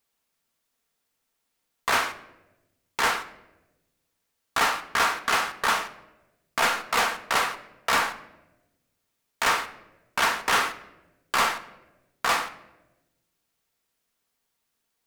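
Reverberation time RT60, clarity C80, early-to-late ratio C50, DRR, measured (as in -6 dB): 1.0 s, 16.0 dB, 14.0 dB, 8.0 dB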